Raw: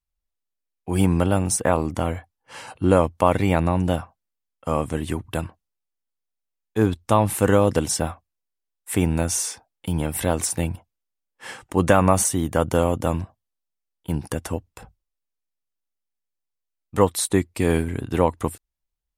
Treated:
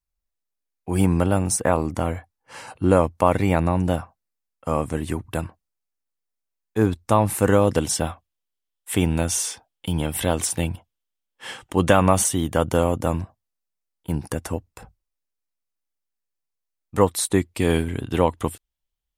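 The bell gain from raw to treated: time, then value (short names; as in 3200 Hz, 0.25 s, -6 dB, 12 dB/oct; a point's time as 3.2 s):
bell 3200 Hz 0.42 oct
7.42 s -4 dB
8.07 s +7 dB
12.43 s +7 dB
12.99 s -3 dB
17.07 s -3 dB
17.7 s +7 dB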